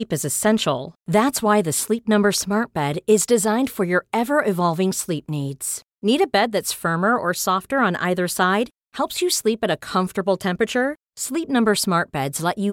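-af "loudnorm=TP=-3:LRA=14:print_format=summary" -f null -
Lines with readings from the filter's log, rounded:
Input Integrated:    -21.0 LUFS
Input True Peak:      -5.4 dBTP
Input LRA:             2.0 LU
Input Threshold:     -31.0 LUFS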